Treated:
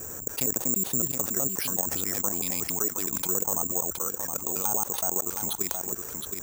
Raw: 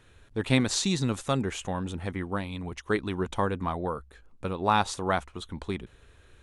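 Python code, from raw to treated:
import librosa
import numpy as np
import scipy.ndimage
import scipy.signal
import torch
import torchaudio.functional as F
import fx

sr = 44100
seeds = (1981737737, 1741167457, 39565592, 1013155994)

p1 = fx.block_reorder(x, sr, ms=93.0, group=2)
p2 = fx.highpass(p1, sr, hz=370.0, slope=6)
p3 = fx.env_lowpass(p2, sr, base_hz=740.0, full_db=-28.5)
p4 = fx.high_shelf(p3, sr, hz=9300.0, db=11.5)
p5 = 10.0 ** (-18.0 / 20.0) * (np.abs((p4 / 10.0 ** (-18.0 / 20.0) + 3.0) % 4.0 - 2.0) - 1.0)
p6 = p4 + F.gain(torch.from_numpy(p5), -3.0).numpy()
p7 = fx.level_steps(p6, sr, step_db=14)
p8 = fx.env_lowpass_down(p7, sr, base_hz=770.0, full_db=-27.0)
p9 = p8 + fx.echo_single(p8, sr, ms=718, db=-18.0, dry=0)
p10 = (np.kron(p9[::6], np.eye(6)[0]) * 6)[:len(p9)]
p11 = fx.env_flatten(p10, sr, amount_pct=70)
y = F.gain(torch.from_numpy(p11), -5.0).numpy()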